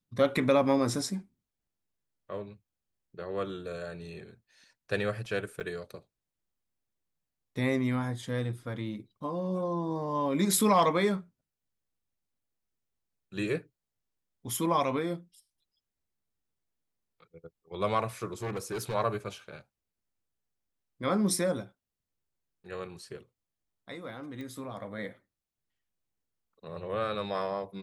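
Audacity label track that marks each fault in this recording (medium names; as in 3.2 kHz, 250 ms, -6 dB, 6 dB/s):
5.600000	5.610000	dropout 7.6 ms
18.330000	18.950000	clipped -30.5 dBFS
24.410000	24.410000	pop -30 dBFS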